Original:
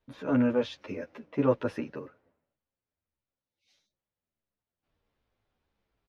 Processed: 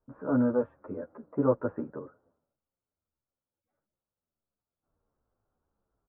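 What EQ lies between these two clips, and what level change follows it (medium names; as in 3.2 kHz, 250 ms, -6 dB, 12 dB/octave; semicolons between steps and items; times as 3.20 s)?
elliptic low-pass 1.4 kHz, stop band 70 dB; 0.0 dB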